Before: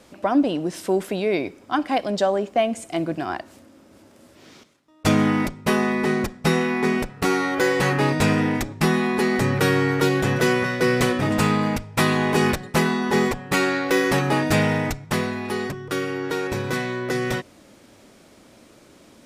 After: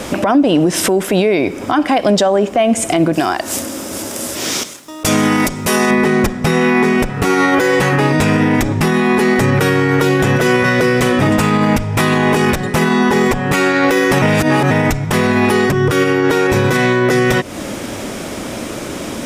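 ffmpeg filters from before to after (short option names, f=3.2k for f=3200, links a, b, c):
-filter_complex "[0:a]asettb=1/sr,asplit=3[a][b][c];[a]atrim=end=3.134[d];[b]atrim=start=3.13:end=5.91,asetpts=PTS-STARTPTS,afade=t=in:d=0.004:c=qsin,afade=t=out:st=2.776:d=0.004:c=qsin,bass=f=250:g=-5,treble=f=4k:g=12[e];[c]atrim=start=5.906[f];[d][e]acrossfade=d=0.004:c1=hsin:c2=qsin[g];[g][f]acrossfade=d=0.004:c1=qsin:c2=hsin,asplit=3[h][i][j];[h]atrim=end=14.222[k];[i]atrim=start=14.218:end=14.712,asetpts=PTS-STARTPTS,areverse[l];[j]atrim=start=14.708[m];[k][l]acrossfade=d=0.004:c1=hsin:c2=hsin[n];[n][m]acrossfade=d=0.004:c1=hsin:c2=hsin,equalizer=f=4.3k:t=o:w=0.24:g=-5.5,acompressor=threshold=-33dB:ratio=6,alimiter=level_in=29.5dB:limit=-1dB:release=50:level=0:latency=1,volume=-3.5dB"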